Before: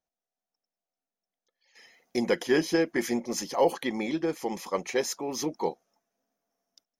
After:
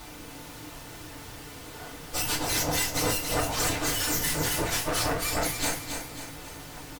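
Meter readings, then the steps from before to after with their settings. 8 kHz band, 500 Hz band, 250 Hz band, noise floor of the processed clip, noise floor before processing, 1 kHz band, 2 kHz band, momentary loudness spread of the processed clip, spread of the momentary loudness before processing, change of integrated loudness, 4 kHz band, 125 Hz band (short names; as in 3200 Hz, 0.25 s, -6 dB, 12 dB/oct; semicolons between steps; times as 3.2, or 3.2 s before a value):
+10.0 dB, -5.5 dB, -5.0 dB, -44 dBFS, under -85 dBFS, +2.5 dB, +4.0 dB, 16 LU, 8 LU, +2.0 dB, +8.5 dB, +9.5 dB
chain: spectrum mirrored in octaves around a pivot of 1400 Hz; vocal rider 0.5 s; full-wave rectifier; added noise pink -55 dBFS; added harmonics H 5 -7 dB, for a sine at -16 dBFS; feedback echo 0.274 s, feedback 46%, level -7 dB; FDN reverb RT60 0.33 s, low-frequency decay 0.95×, high-frequency decay 0.8×, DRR -2.5 dB; gain -2.5 dB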